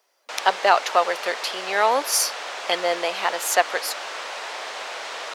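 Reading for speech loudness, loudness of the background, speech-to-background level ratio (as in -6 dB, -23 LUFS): -22.5 LUFS, -31.5 LUFS, 9.0 dB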